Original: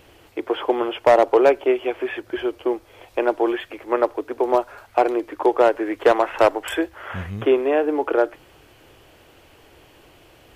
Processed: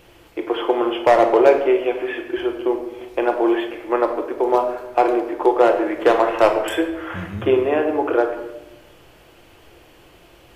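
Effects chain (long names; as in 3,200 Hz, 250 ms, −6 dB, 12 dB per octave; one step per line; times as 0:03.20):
rectangular room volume 430 cubic metres, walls mixed, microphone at 0.84 metres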